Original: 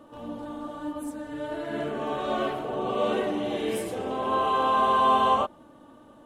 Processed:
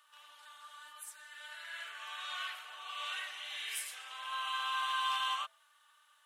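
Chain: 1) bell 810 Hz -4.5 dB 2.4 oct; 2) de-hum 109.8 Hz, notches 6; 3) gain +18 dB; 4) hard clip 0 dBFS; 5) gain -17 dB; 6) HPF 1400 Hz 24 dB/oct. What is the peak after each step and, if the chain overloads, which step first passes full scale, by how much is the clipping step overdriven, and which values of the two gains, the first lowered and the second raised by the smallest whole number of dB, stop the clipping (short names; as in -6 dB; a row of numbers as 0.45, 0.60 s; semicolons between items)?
-14.5, -14.5, +3.5, 0.0, -17.0, -23.0 dBFS; step 3, 3.5 dB; step 3 +14 dB, step 5 -13 dB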